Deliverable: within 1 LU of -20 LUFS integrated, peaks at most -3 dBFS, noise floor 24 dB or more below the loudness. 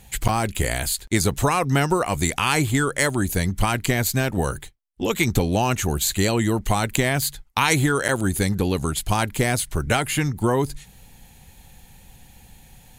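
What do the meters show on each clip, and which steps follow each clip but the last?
dropouts 2; longest dropout 7.3 ms; loudness -22.0 LUFS; peak -3.0 dBFS; loudness target -20.0 LUFS
-> interpolate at 0.28/8.08, 7.3 ms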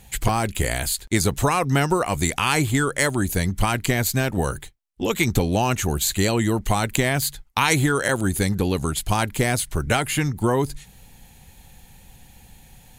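dropouts 0; loudness -22.0 LUFS; peak -3.0 dBFS; loudness target -20.0 LUFS
-> gain +2 dB; limiter -3 dBFS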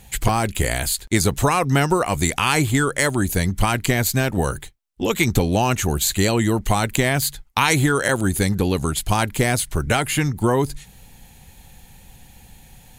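loudness -20.0 LUFS; peak -3.0 dBFS; noise floor -48 dBFS

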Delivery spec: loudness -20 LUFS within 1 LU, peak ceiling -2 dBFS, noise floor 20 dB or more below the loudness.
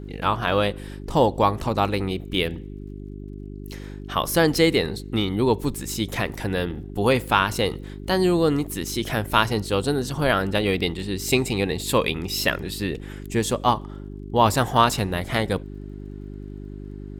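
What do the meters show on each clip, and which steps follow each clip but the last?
ticks 29/s; hum 50 Hz; harmonics up to 400 Hz; hum level -33 dBFS; loudness -23.0 LUFS; peak -2.0 dBFS; loudness target -20.0 LUFS
-> de-click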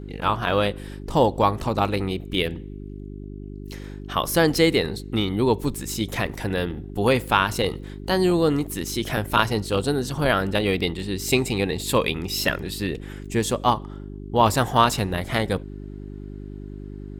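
ticks 1.9/s; hum 50 Hz; harmonics up to 400 Hz; hum level -33 dBFS
-> de-hum 50 Hz, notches 8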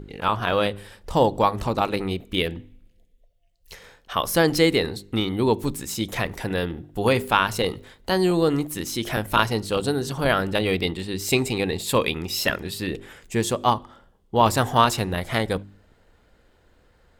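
hum none; loudness -23.5 LUFS; peak -2.0 dBFS; loudness target -20.0 LUFS
-> gain +3.5 dB; limiter -2 dBFS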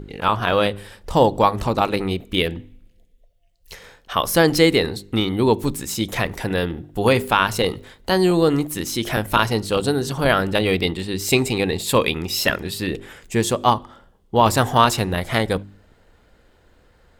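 loudness -20.0 LUFS; peak -2.0 dBFS; noise floor -57 dBFS

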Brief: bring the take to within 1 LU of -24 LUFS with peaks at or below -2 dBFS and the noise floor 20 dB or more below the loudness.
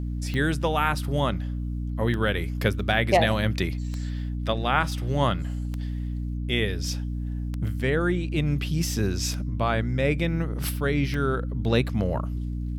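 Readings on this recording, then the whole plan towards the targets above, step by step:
clicks 7; hum 60 Hz; harmonics up to 300 Hz; hum level -27 dBFS; loudness -26.5 LUFS; peak -7.0 dBFS; loudness target -24.0 LUFS
-> de-click; de-hum 60 Hz, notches 5; gain +2.5 dB

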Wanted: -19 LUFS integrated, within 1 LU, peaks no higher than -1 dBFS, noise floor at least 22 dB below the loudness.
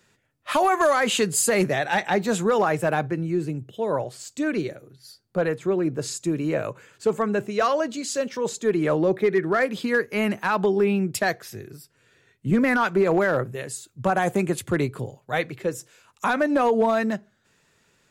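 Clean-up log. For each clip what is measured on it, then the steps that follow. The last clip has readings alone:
clipped 0.4%; flat tops at -13.0 dBFS; loudness -23.5 LUFS; peak -13.0 dBFS; loudness target -19.0 LUFS
-> clip repair -13 dBFS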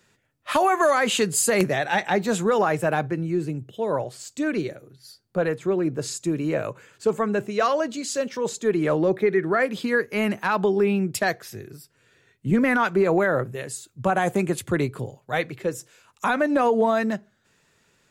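clipped 0.0%; loudness -23.5 LUFS; peak -4.0 dBFS; loudness target -19.0 LUFS
-> gain +4.5 dB; limiter -1 dBFS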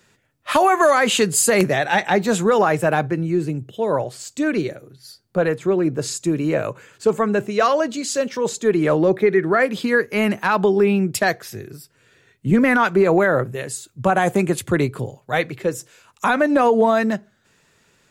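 loudness -19.0 LUFS; peak -1.0 dBFS; noise floor -61 dBFS

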